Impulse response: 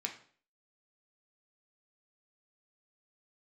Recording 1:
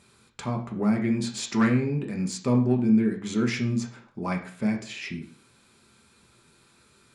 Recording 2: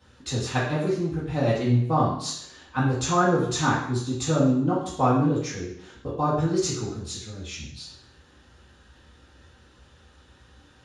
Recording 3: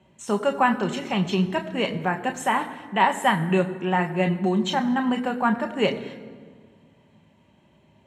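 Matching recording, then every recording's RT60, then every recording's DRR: 1; 0.50, 0.70, 1.7 seconds; 2.0, −8.0, 4.5 decibels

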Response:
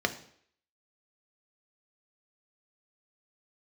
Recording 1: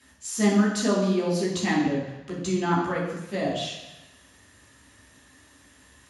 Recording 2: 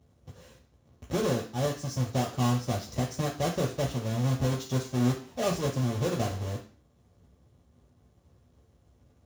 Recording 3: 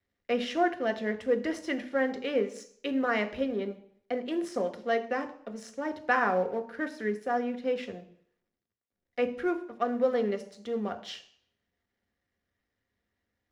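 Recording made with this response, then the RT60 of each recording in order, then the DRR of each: 3; 1.0, 0.45, 0.60 seconds; −7.5, −2.0, 6.0 decibels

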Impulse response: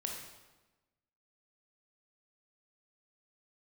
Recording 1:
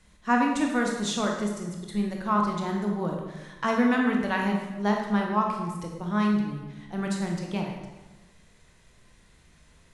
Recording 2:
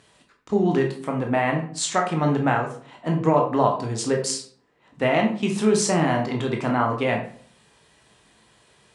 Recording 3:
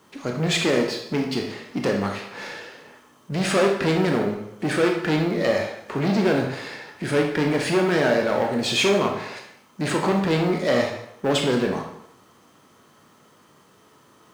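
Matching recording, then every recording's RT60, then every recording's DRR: 1; 1.1, 0.50, 0.80 seconds; 0.0, 1.0, 1.0 decibels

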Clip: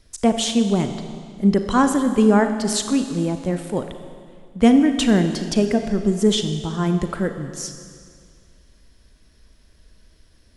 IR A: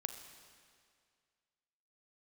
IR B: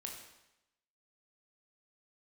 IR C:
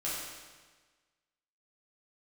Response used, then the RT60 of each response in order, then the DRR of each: A; 2.1, 0.90, 1.4 seconds; 7.0, 0.5, −8.5 decibels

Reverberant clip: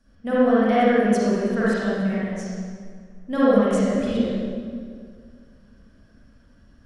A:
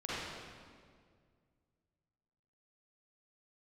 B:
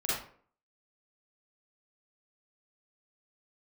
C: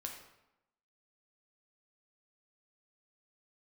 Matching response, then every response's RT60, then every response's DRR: A; 2.0, 0.50, 0.90 seconds; −10.0, −9.0, 1.0 decibels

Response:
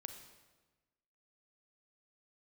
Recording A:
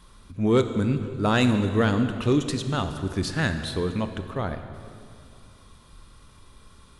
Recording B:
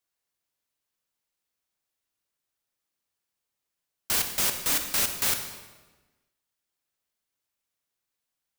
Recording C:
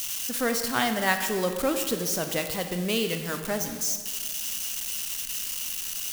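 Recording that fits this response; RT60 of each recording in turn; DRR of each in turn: B; 2.4, 1.2, 1.7 seconds; 8.0, 6.5, 6.0 decibels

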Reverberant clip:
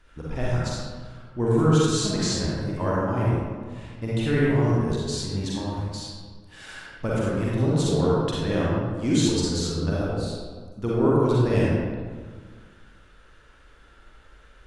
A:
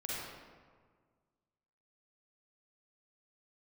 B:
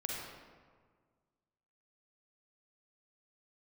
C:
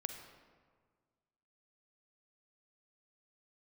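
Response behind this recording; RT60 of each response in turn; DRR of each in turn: A; 1.7, 1.7, 1.7 seconds; −7.0, −3.0, 6.0 decibels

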